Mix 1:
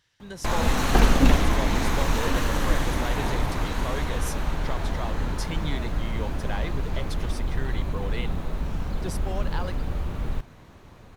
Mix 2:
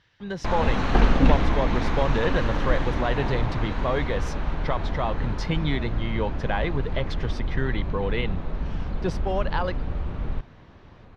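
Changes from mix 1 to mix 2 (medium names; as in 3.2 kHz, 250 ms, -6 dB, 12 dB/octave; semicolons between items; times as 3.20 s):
speech +8.5 dB; master: add distance through air 210 m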